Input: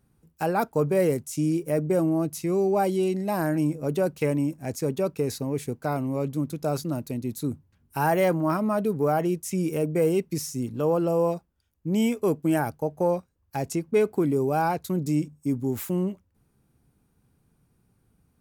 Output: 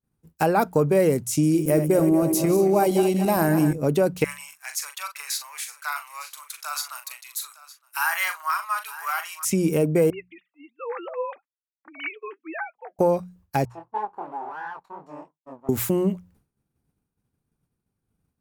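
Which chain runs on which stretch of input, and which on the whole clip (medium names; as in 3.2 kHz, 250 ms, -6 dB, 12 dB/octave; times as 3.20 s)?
1.43–3.73 s: backward echo that repeats 114 ms, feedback 67%, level -9 dB + treble shelf 10 kHz +9 dB
4.24–9.45 s: steep high-pass 1.1 kHz + doubling 41 ms -8.5 dB + delay 911 ms -16.5 dB
10.10–12.99 s: formants replaced by sine waves + high-pass 1.2 kHz + flange 1.6 Hz, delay 2.4 ms, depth 3.3 ms, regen +59%
13.65–15.69 s: comb filter that takes the minimum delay 0.7 ms + band-pass filter 930 Hz, Q 5.5 + chorus 2.8 Hz, delay 18 ms, depth 6.9 ms
whole clip: hum notches 60/120/180 Hz; expander -53 dBFS; compression 2:1, threshold -29 dBFS; trim +9 dB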